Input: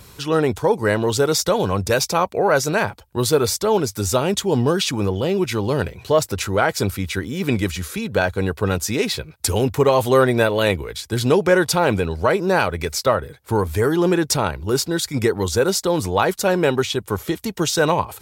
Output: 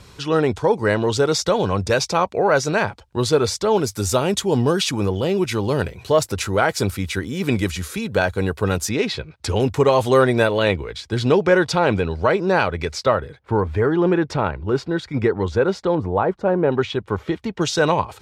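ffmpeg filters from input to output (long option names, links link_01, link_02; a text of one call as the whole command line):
ffmpeg -i in.wav -af "asetnsamples=nb_out_samples=441:pad=0,asendcmd='3.77 lowpass f 12000;8.89 lowpass f 4300;9.6 lowpass f 8500;10.58 lowpass f 4800;13.39 lowpass f 2300;15.95 lowpass f 1100;16.72 lowpass f 2800;17.61 lowpass f 5700',lowpass=6500" out.wav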